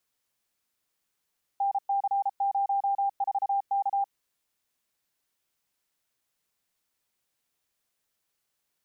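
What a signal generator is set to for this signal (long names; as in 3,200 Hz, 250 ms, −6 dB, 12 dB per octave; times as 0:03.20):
Morse code "NC04K" 33 words per minute 795 Hz −23 dBFS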